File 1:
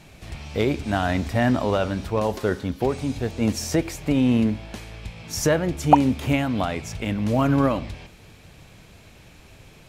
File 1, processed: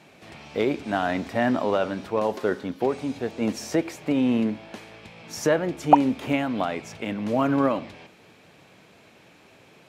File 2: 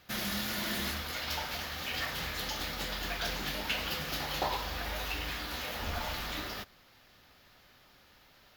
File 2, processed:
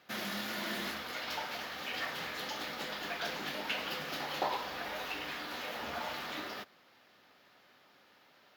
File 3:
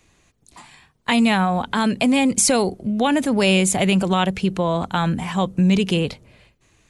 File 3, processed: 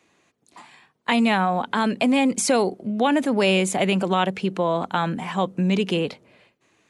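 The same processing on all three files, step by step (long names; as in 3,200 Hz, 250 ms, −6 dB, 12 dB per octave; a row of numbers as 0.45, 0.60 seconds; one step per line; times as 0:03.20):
high-pass filter 230 Hz 12 dB per octave
high-shelf EQ 4,300 Hz −9.5 dB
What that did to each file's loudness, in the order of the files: −2.0, −3.0, −3.0 LU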